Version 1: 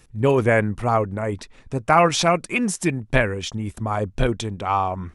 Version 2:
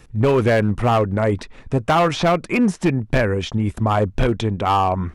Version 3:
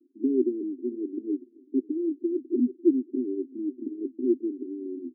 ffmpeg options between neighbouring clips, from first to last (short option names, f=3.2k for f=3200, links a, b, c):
-filter_complex "[0:a]highshelf=f=4.2k:g=-9,acrossover=split=1700|5000[a][b][c];[a]acompressor=threshold=-19dB:ratio=4[d];[b]acompressor=threshold=-36dB:ratio=4[e];[c]acompressor=threshold=-51dB:ratio=4[f];[d][e][f]amix=inputs=3:normalize=0,asoftclip=type=hard:threshold=-18.5dB,volume=7.5dB"
-filter_complex "[0:a]asuperpass=centerf=310:order=12:qfactor=2.3,asplit=2[a][b];[b]adelay=548.1,volume=-25dB,highshelf=f=4k:g=-12.3[c];[a][c]amix=inputs=2:normalize=0"